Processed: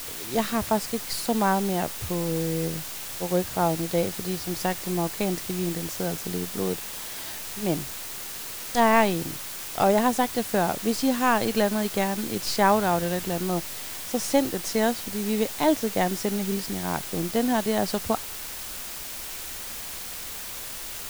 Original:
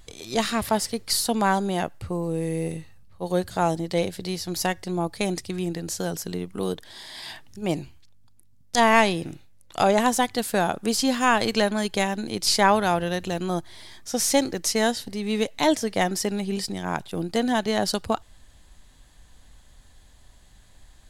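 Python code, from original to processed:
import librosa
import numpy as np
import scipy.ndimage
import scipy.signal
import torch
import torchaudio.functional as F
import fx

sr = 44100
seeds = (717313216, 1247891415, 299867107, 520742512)

y = fx.high_shelf(x, sr, hz=2100.0, db=-9.5)
y = fx.quant_dither(y, sr, seeds[0], bits=6, dither='triangular')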